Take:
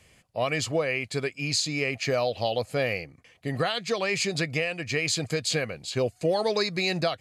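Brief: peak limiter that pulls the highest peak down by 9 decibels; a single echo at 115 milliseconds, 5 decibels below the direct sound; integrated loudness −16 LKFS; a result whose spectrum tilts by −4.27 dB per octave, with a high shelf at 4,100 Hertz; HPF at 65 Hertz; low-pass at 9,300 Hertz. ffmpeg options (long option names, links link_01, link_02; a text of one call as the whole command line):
ffmpeg -i in.wav -af "highpass=65,lowpass=9300,highshelf=frequency=4100:gain=-6,alimiter=limit=-23dB:level=0:latency=1,aecho=1:1:115:0.562,volume=16dB" out.wav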